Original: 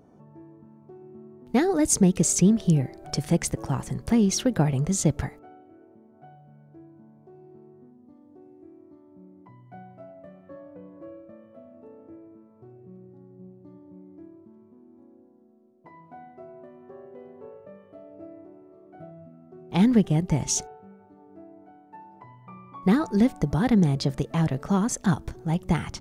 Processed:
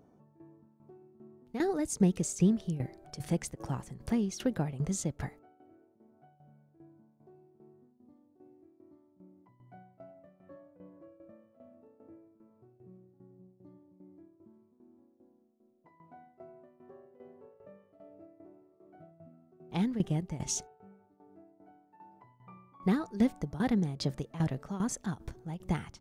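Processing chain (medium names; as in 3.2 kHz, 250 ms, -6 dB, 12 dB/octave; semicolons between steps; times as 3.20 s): tremolo saw down 2.5 Hz, depth 80%; trim -5.5 dB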